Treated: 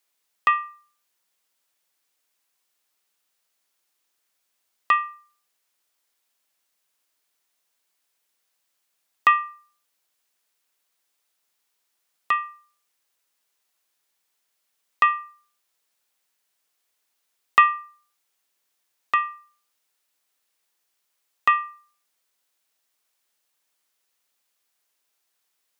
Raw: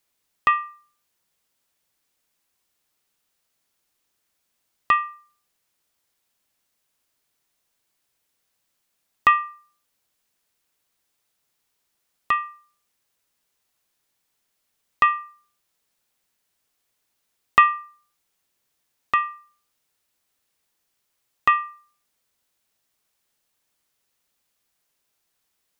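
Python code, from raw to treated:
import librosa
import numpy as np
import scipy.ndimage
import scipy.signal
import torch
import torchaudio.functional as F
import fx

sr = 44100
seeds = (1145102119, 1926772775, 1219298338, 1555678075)

y = fx.highpass(x, sr, hz=520.0, slope=6)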